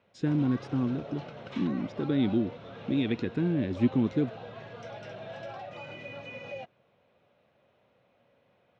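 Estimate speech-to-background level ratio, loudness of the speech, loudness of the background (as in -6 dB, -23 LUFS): 13.5 dB, -29.5 LUFS, -43.0 LUFS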